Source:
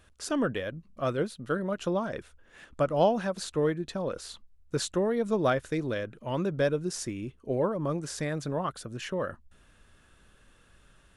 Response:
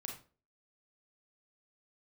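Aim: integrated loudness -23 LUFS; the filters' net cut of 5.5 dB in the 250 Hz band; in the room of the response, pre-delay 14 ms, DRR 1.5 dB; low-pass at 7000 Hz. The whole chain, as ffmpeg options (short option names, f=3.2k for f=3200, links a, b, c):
-filter_complex "[0:a]lowpass=7k,equalizer=f=250:t=o:g=-8,asplit=2[a][b];[1:a]atrim=start_sample=2205,adelay=14[c];[b][c]afir=irnorm=-1:irlink=0,volume=1dB[d];[a][d]amix=inputs=2:normalize=0,volume=7dB"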